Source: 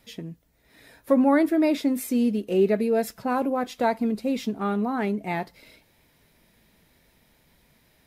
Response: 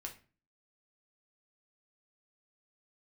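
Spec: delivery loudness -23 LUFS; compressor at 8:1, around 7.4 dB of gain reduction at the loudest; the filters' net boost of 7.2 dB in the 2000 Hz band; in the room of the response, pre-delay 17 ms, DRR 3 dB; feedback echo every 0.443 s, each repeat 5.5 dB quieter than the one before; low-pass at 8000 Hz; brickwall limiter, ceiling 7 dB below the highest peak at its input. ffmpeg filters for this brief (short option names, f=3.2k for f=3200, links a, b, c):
-filter_complex "[0:a]lowpass=8k,equalizer=f=2k:t=o:g=9,acompressor=threshold=-22dB:ratio=8,alimiter=limit=-20dB:level=0:latency=1,aecho=1:1:443|886|1329|1772|2215|2658|3101:0.531|0.281|0.149|0.079|0.0419|0.0222|0.0118,asplit=2[a][b];[1:a]atrim=start_sample=2205,adelay=17[c];[b][c]afir=irnorm=-1:irlink=0,volume=0dB[d];[a][d]amix=inputs=2:normalize=0,volume=4dB"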